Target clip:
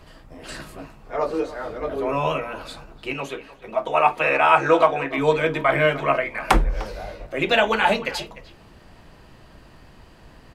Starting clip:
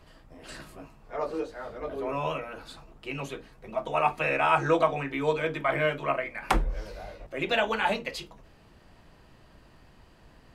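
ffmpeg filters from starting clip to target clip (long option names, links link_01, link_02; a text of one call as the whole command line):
ffmpeg -i in.wav -filter_complex "[0:a]asettb=1/sr,asplit=3[link_01][link_02][link_03];[link_01]atrim=end=3.134[link_04];[link_02]atrim=start=3.13:end=5.18,asetpts=PTS-STARTPTS,afade=type=in:duration=0.004:curve=qsin,afade=type=out:start_time=2.046:duration=0.004:curve=qsin,bass=frequency=250:gain=-9,treble=frequency=4000:gain=-4[link_05];[link_03]atrim=start=5.176[link_06];[link_04][link_05]acrossfade=duration=0.004:curve1=hsin:curve2=qsin[link_07];[link_07][link_06]acrossfade=duration=0.004:curve1=qsin:curve2=hsin,asplit=2[link_08][link_09];[link_09]adelay=300,highpass=300,lowpass=3400,asoftclip=type=hard:threshold=-17.5dB,volume=-16dB[link_10];[link_08][link_10]amix=inputs=2:normalize=0,volume=7.5dB" out.wav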